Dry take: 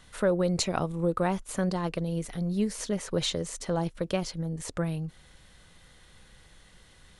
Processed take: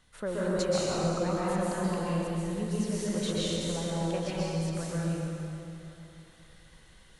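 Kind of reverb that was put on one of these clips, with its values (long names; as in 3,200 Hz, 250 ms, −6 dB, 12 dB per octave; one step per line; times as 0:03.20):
dense smooth reverb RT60 3 s, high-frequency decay 0.8×, pre-delay 115 ms, DRR −8 dB
level −9.5 dB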